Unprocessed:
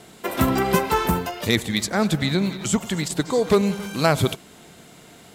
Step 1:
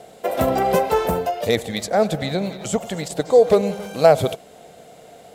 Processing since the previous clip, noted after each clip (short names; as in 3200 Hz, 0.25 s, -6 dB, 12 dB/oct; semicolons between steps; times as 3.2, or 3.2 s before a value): band shelf 590 Hz +13 dB 1 oct; gain -3.5 dB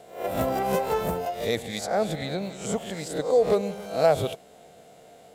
spectral swells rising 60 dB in 0.45 s; gain -8 dB